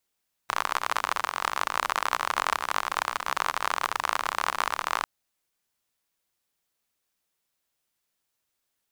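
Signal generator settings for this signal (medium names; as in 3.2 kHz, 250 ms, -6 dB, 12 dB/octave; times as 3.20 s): rain from filtered ticks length 4.55 s, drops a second 49, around 1.1 kHz, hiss -23.5 dB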